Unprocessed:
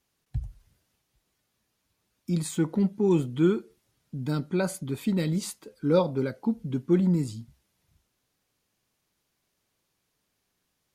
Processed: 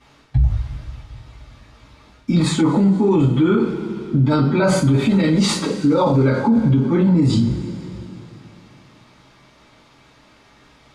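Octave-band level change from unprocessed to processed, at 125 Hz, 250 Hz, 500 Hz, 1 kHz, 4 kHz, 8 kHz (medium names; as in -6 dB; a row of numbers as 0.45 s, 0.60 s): +12.5 dB, +11.0 dB, +8.0 dB, +14.0 dB, +15.0 dB, +9.0 dB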